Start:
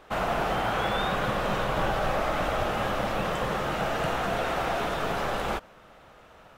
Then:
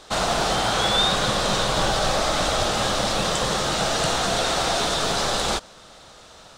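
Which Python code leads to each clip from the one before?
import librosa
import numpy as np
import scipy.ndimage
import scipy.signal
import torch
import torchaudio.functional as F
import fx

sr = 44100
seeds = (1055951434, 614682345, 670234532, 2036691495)

y = fx.band_shelf(x, sr, hz=5800.0, db=15.5, octaves=1.7)
y = y * librosa.db_to_amplitude(4.0)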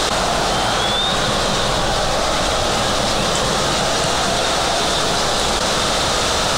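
y = fx.env_flatten(x, sr, amount_pct=100)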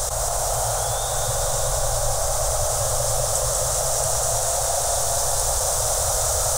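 y = fx.curve_eq(x, sr, hz=(120.0, 180.0, 340.0, 550.0, 2700.0, 4300.0, 6200.0, 8800.0, 15000.0), db=(0, -27, -28, -5, -23, -17, -1, 4, 10))
y = fx.echo_thinned(y, sr, ms=195, feedback_pct=72, hz=230.0, wet_db=-3.5)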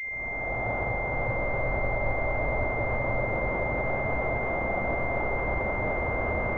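y = fx.fade_in_head(x, sr, length_s=0.74)
y = fx.pwm(y, sr, carrier_hz=2100.0)
y = y * librosa.db_to_amplitude(-4.5)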